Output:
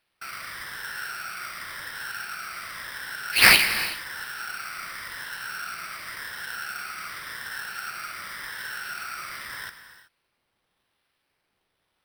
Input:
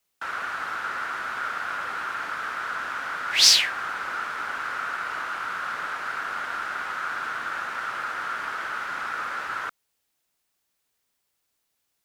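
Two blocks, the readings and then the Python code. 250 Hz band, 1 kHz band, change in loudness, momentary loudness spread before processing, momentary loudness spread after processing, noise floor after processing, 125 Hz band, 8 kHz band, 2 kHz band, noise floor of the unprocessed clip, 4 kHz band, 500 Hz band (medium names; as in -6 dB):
+3.5 dB, -6.0 dB, -0.5 dB, 6 LU, 13 LU, -77 dBFS, +8.0 dB, -3.5 dB, +1.5 dB, -77 dBFS, -3.0 dB, -1.0 dB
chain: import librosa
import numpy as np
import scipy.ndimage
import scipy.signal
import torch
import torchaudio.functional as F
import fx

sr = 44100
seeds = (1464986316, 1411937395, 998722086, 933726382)

y = fx.spec_ripple(x, sr, per_octave=1.1, drift_hz=-0.9, depth_db=11)
y = fx.band_shelf(y, sr, hz=540.0, db=-13.0, octaves=2.8)
y = fx.sample_hold(y, sr, seeds[0], rate_hz=7000.0, jitter_pct=0)
y = fx.notch(y, sr, hz=6800.0, q=7.4)
y = fx.rev_gated(y, sr, seeds[1], gate_ms=400, shape='flat', drr_db=9.0)
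y = y * 10.0 ** (-1.5 / 20.0)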